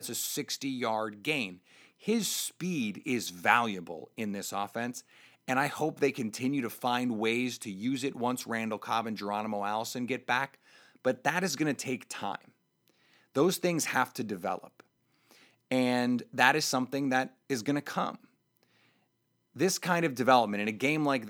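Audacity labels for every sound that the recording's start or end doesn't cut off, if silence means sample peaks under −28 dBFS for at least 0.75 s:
13.360000	14.560000	sound
15.720000	18.100000	sound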